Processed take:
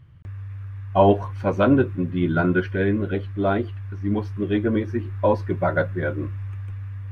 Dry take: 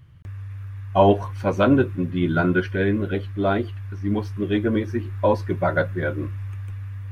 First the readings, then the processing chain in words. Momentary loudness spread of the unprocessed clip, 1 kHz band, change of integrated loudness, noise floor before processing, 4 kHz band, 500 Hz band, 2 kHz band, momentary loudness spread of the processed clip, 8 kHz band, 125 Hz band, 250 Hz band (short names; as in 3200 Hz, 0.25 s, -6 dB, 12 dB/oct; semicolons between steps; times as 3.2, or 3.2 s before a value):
15 LU, -0.5 dB, 0.0 dB, -34 dBFS, -3.5 dB, 0.0 dB, -1.0 dB, 15 LU, n/a, 0.0 dB, 0.0 dB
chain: high shelf 4500 Hz -10.5 dB